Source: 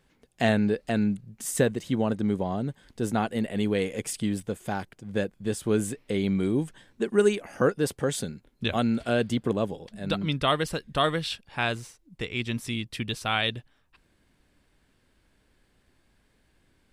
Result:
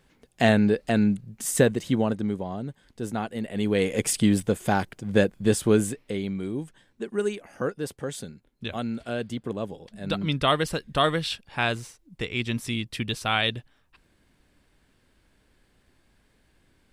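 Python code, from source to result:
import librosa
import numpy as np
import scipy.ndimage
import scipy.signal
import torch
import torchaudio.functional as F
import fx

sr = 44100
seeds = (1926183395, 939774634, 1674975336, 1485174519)

y = fx.gain(x, sr, db=fx.line((1.9, 3.5), (2.42, -3.5), (3.41, -3.5), (4.03, 7.5), (5.56, 7.5), (6.34, -5.5), (9.47, -5.5), (10.36, 2.0)))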